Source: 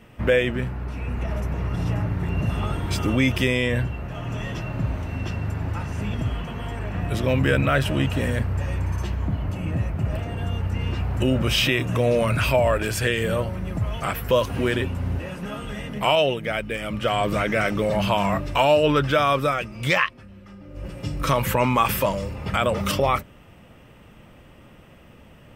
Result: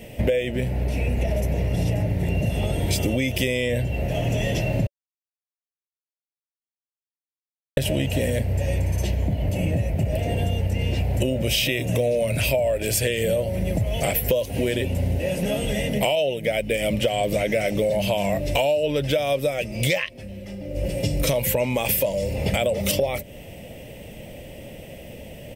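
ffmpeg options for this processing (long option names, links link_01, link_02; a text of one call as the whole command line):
ffmpeg -i in.wav -filter_complex "[0:a]asplit=3[link_01][link_02][link_03];[link_01]atrim=end=4.87,asetpts=PTS-STARTPTS,afade=type=out:start_time=4.866:duration=0.004:curve=hsin[link_04];[link_02]atrim=start=4.87:end=7.77,asetpts=PTS-STARTPTS,volume=0[link_05];[link_03]atrim=start=7.77,asetpts=PTS-STARTPTS,afade=type=in:duration=0.004:curve=hsin[link_06];[link_04][link_05][link_06]concat=n=3:v=0:a=1,firequalizer=gain_entry='entry(350,0);entry(570,8);entry(1200,-20);entry(2000,1);entry(11000,10)':delay=0.05:min_phase=1,acompressor=threshold=-27dB:ratio=10,volume=8dB" out.wav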